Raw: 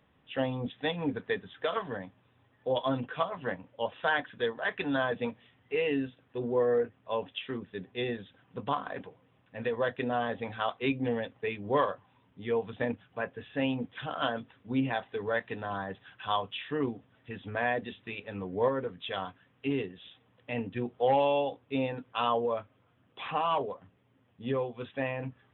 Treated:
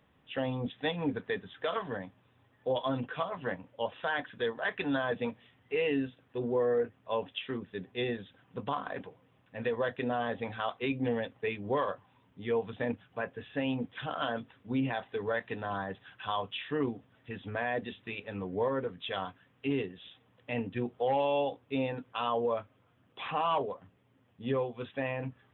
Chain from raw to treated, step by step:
brickwall limiter −21 dBFS, peak gain reduction 6.5 dB

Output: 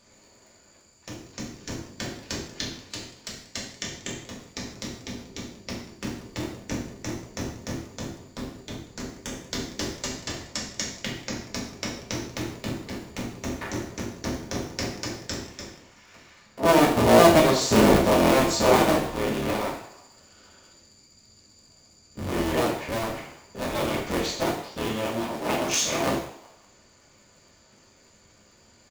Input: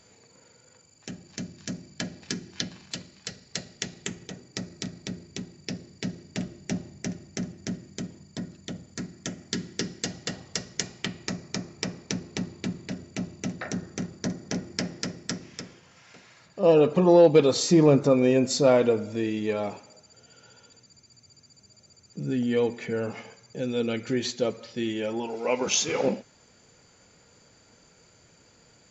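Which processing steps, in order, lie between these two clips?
sub-harmonics by changed cycles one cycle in 3, inverted
echo with shifted repeats 187 ms, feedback 31%, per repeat +140 Hz, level −19 dB
reverb whose tail is shaped and stops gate 190 ms falling, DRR −2.5 dB
level −3.5 dB

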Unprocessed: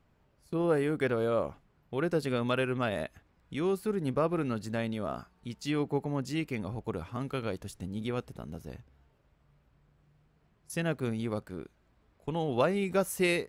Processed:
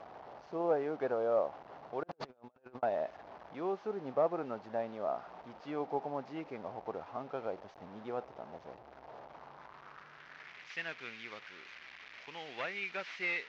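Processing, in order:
linear delta modulator 32 kbit/s, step −39 dBFS
band-pass filter sweep 730 Hz → 2,200 Hz, 0:09.26–0:10.64
0:02.03–0:02.83: compressor whose output falls as the input rises −54 dBFS, ratio −0.5
level +4 dB

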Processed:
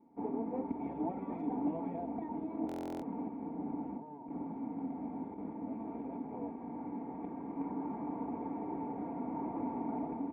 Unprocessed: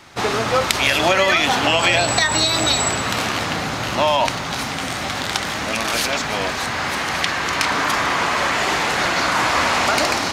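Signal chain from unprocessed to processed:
lower of the sound and its delayed copy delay 4.3 ms
high-pass filter 100 Hz 12 dB per octave
parametric band 2,600 Hz +3.5 dB 0.4 octaves
0:03.28–0:05.53: compressor whose output falls as the input rises −26 dBFS, ratio −1
formant resonators in series u
high-frequency loss of the air 260 metres
far-end echo of a speakerphone 320 ms, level −20 dB
buffer that repeats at 0:02.67, samples 1,024, times 14
level −1.5 dB

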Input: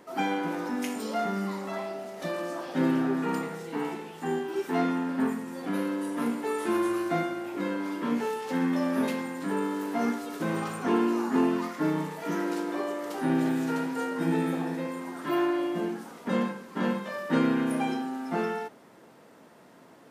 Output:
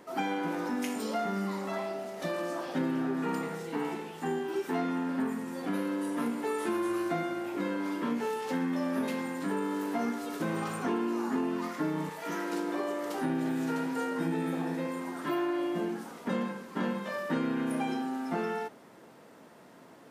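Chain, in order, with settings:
0:12.09–0:12.53: low-shelf EQ 430 Hz −9.5 dB
downward compressor 4 to 1, threshold −28 dBFS, peak gain reduction 8 dB

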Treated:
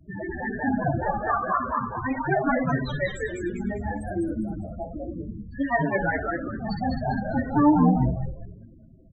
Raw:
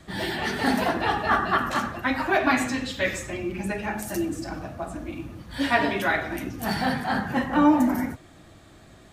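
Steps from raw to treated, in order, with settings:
spectral peaks only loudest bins 8
echo with shifted repeats 201 ms, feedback 33%, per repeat −120 Hz, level −3 dB
0:04.63–0:05.27: one half of a high-frequency compander encoder only

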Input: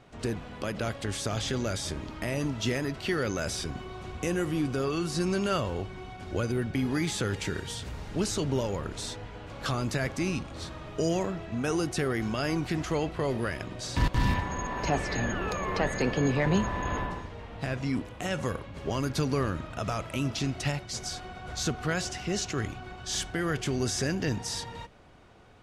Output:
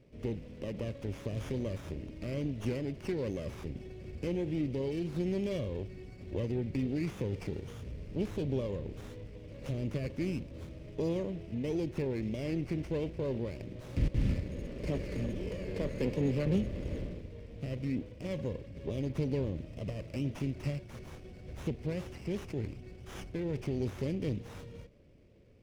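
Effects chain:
elliptic band-stop filter 570–2,200 Hz
high-frequency loss of the air 200 metres
windowed peak hold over 9 samples
level −3 dB

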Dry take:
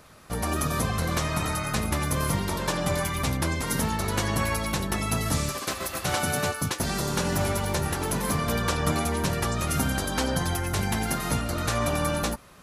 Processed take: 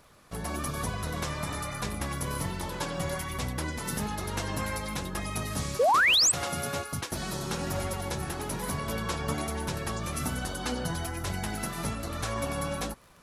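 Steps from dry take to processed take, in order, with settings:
surface crackle 24 per second −38 dBFS
flanger 1.2 Hz, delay 0.9 ms, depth 5 ms, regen +75%
change of speed 0.955×
sound drawn into the spectrogram rise, 0:05.79–0:06.32, 440–8,800 Hz −20 dBFS
level −1.5 dB

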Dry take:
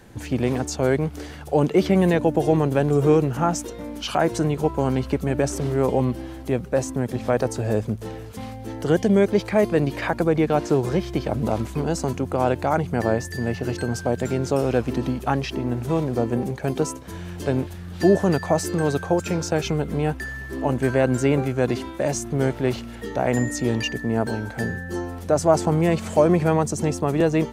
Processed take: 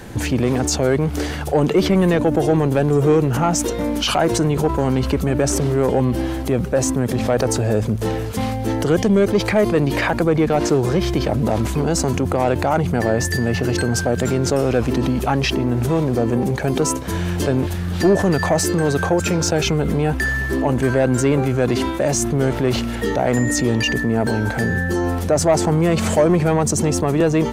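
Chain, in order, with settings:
in parallel at −2 dB: compressor whose output falls as the input rises −31 dBFS, ratio −1
on the sum: soft clipping −10 dBFS, distortion −18 dB
level +3.5 dB

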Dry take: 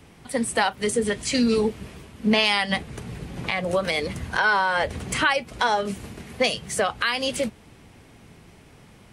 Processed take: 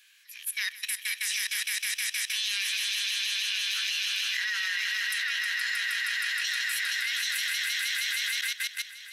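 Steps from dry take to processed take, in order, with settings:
loose part that buzzes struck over −30 dBFS, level −24 dBFS
Butterworth high-pass 1,200 Hz 72 dB per octave
formants moved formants +4 semitones
echo that builds up and dies away 157 ms, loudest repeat 5, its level −6.5 dB
output level in coarse steps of 15 dB

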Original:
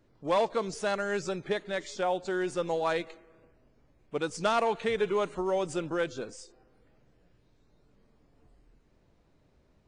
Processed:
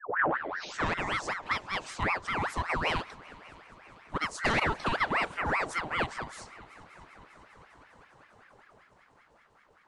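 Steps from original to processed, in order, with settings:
turntable start at the beginning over 1.10 s
echo machine with several playback heads 200 ms, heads second and third, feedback 72%, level −23.5 dB
ring modulator whose carrier an LFO sweeps 1,100 Hz, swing 60%, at 5.2 Hz
level +2 dB

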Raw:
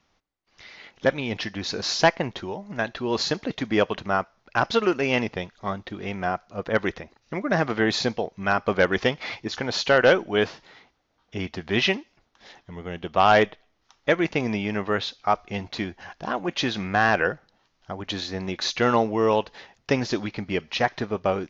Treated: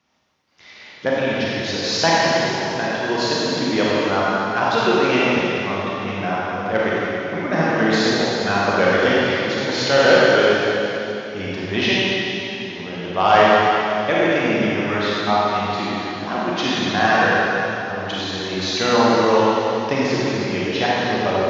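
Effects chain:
high-pass filter 110 Hz
convolution reverb RT60 3.2 s, pre-delay 27 ms, DRR −7.5 dB
level −1.5 dB

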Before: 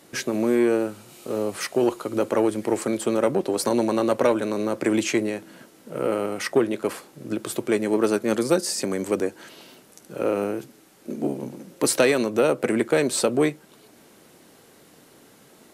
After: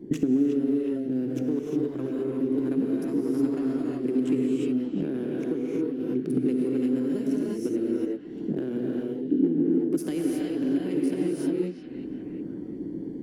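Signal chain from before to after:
adaptive Wiener filter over 41 samples
reverb whose tail is shaped and stops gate 460 ms rising, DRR −4.5 dB
downward compressor 8 to 1, threshold −37 dBFS, peak gain reduction 25 dB
low shelf with overshoot 370 Hz +13 dB, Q 3
echo through a band-pass that steps 428 ms, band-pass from 3,100 Hz, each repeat −0.7 octaves, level −7.5 dB
speed change +19%

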